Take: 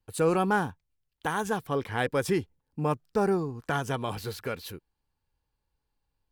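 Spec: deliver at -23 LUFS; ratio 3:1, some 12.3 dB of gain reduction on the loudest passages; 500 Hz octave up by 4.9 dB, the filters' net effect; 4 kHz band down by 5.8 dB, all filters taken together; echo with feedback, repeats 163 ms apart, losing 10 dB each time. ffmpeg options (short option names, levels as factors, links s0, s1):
-af "equalizer=f=500:t=o:g=6,equalizer=f=4000:t=o:g=-8,acompressor=threshold=0.0224:ratio=3,aecho=1:1:163|326|489|652:0.316|0.101|0.0324|0.0104,volume=4.22"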